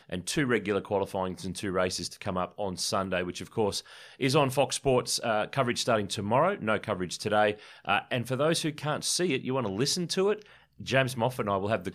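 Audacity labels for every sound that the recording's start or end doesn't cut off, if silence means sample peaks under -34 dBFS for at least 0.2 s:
4.210000	7.530000	sound
7.870000	10.420000	sound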